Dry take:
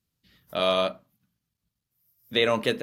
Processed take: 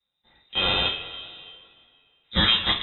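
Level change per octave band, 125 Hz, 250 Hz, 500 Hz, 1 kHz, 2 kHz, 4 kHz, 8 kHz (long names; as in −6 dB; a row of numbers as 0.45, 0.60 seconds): +6.5 dB, −0.5 dB, −10.5 dB, −0.5 dB, +4.0 dB, +9.5 dB, can't be measured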